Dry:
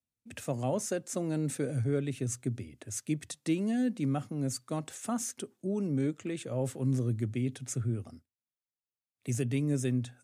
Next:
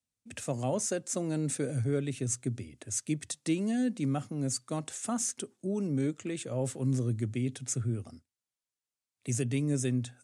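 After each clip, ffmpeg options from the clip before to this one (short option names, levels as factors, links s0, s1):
-af "lowpass=f=9500:w=0.5412,lowpass=f=9500:w=1.3066,highshelf=f=6700:g=10"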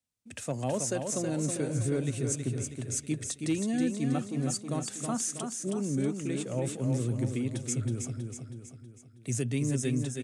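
-af "asoftclip=type=hard:threshold=0.0891,aecho=1:1:321|642|963|1284|1605|1926:0.531|0.26|0.127|0.0625|0.0306|0.015"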